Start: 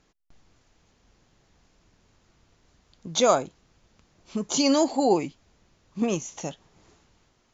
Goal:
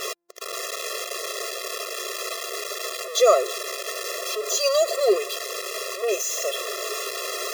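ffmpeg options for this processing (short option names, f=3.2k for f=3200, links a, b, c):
-af "aeval=exprs='val(0)+0.5*0.0841*sgn(val(0))':c=same,afftfilt=real='re*eq(mod(floor(b*sr/1024/350),2),1)':imag='im*eq(mod(floor(b*sr/1024/350),2),1)':win_size=1024:overlap=0.75,volume=2.5dB"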